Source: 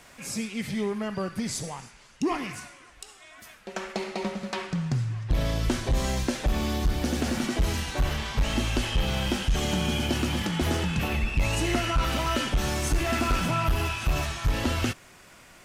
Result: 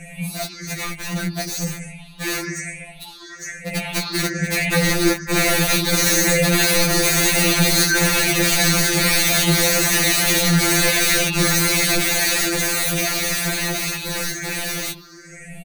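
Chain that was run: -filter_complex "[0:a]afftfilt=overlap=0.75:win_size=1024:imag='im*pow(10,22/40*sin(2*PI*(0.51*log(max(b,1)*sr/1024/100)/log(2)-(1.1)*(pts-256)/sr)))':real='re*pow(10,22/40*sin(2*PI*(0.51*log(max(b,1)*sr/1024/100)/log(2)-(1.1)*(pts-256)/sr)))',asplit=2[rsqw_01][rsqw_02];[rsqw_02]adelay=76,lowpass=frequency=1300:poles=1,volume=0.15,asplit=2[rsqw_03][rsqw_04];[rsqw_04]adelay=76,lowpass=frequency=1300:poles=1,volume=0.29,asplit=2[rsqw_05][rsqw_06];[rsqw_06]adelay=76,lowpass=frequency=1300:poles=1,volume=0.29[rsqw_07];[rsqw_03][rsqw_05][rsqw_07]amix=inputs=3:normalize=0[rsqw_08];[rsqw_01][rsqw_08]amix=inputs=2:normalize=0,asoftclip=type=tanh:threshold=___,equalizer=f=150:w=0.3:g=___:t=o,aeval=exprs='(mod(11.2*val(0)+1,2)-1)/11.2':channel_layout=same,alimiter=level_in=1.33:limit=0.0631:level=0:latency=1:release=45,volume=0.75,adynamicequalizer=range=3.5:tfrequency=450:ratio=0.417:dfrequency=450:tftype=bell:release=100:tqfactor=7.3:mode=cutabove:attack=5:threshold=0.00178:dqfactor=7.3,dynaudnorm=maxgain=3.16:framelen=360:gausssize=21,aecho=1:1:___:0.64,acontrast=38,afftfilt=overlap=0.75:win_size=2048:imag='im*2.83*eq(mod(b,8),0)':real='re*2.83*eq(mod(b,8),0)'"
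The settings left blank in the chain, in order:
0.211, 11.5, 6.3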